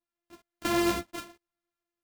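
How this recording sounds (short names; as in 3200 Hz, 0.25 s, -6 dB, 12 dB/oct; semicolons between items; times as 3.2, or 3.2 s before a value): a buzz of ramps at a fixed pitch in blocks of 128 samples; tremolo saw up 1.1 Hz, depth 35%; a shimmering, thickened sound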